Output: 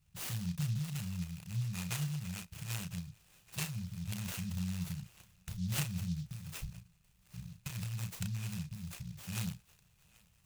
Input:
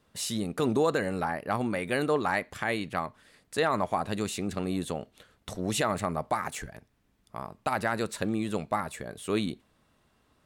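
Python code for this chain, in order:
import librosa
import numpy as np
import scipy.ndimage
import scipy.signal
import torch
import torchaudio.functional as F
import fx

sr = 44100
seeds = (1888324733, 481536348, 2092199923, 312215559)

y = fx.brickwall_bandstop(x, sr, low_hz=190.0, high_hz=2400.0)
y = fx.band_shelf(y, sr, hz=5800.0, db=-11.0, octaves=1.7)
y = fx.doubler(y, sr, ms=34.0, db=-6.0)
y = fx.echo_thinned(y, sr, ms=783, feedback_pct=79, hz=520.0, wet_db=-24)
y = fx.noise_mod_delay(y, sr, seeds[0], noise_hz=4500.0, depth_ms=0.082)
y = y * 10.0 ** (1.0 / 20.0)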